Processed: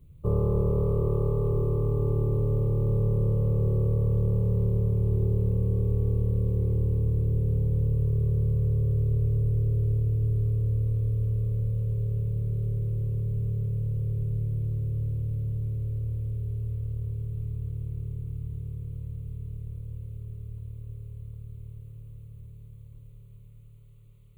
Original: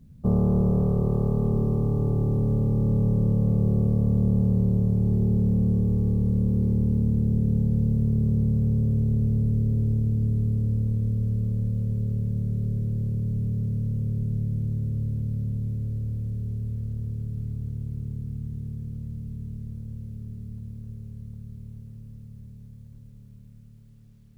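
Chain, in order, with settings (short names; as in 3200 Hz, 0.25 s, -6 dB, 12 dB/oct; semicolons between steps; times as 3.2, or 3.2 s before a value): fixed phaser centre 1100 Hz, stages 8; gain +2 dB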